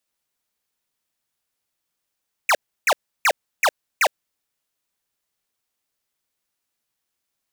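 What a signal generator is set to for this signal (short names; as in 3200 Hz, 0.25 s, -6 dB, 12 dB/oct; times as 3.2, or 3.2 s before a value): burst of laser zaps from 2700 Hz, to 490 Hz, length 0.06 s square, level -16 dB, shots 5, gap 0.32 s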